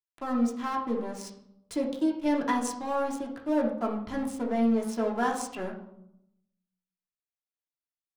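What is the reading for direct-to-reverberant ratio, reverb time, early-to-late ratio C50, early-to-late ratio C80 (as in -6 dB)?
-2.0 dB, 0.80 s, 7.0 dB, 10.5 dB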